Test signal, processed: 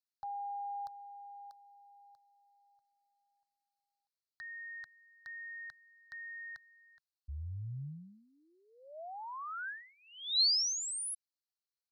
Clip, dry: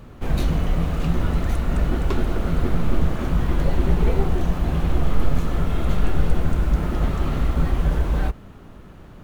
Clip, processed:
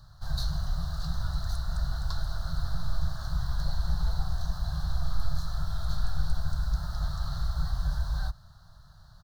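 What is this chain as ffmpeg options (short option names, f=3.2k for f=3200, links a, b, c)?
-af "firequalizer=gain_entry='entry(140,0);entry(250,-28);entry(410,-29);entry(640,-5);entry(1100,-2);entry(1600,1);entry(2300,-30);entry(4100,15);entry(7000,2)':delay=0.05:min_phase=1,volume=-8.5dB"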